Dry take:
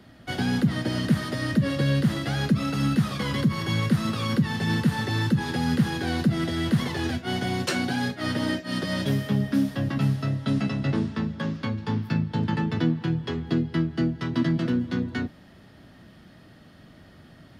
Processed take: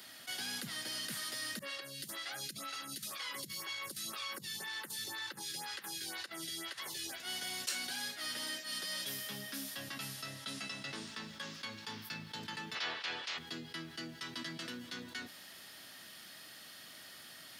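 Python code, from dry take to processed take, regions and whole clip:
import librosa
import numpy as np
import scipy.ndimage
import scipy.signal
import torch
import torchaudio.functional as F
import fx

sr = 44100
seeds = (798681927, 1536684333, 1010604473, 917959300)

y = fx.chain(x, sr, fx.notch_comb(f0_hz=240.0),
    fx.over_compress(threshold_db=-25.0, ratio=-0.5),
    fx.stagger_phaser(hz=2.0), at=(1.59, 7.2))
y = fx.spec_clip(y, sr, under_db=30, at=(12.74, 13.37), fade=0.02)
y = fx.lowpass(y, sr, hz=3900.0, slope=12, at=(12.74, 13.37), fade=0.02)
y = np.diff(y, prepend=0.0)
y = fx.env_flatten(y, sr, amount_pct=50)
y = F.gain(torch.from_numpy(y), -4.0).numpy()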